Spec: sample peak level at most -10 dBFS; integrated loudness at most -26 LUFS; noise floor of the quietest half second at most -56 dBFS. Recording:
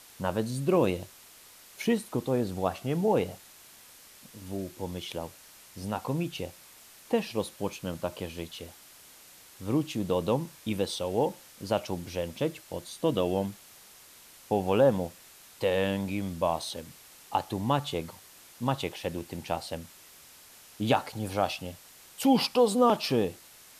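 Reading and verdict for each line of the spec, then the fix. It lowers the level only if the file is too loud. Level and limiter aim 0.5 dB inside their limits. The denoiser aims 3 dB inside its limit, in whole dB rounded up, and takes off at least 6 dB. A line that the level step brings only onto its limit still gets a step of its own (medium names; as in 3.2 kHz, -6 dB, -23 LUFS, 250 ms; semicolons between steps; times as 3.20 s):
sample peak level -11.5 dBFS: pass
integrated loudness -30.0 LUFS: pass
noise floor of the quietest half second -53 dBFS: fail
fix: noise reduction 6 dB, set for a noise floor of -53 dBFS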